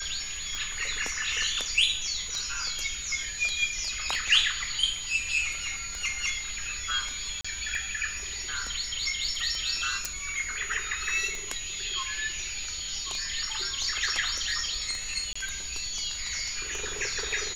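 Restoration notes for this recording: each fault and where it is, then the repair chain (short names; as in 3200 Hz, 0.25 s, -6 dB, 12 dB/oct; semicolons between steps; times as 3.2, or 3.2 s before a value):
tick 33 1/3 rpm -20 dBFS
tone 6800 Hz -36 dBFS
7.41–7.45 gap 35 ms
10.05 pop
15.33–15.36 gap 25 ms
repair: de-click; notch 6800 Hz, Q 30; interpolate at 7.41, 35 ms; interpolate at 15.33, 25 ms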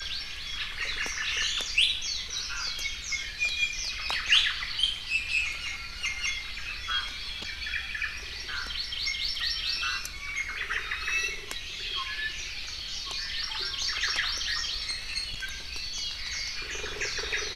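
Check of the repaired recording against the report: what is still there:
none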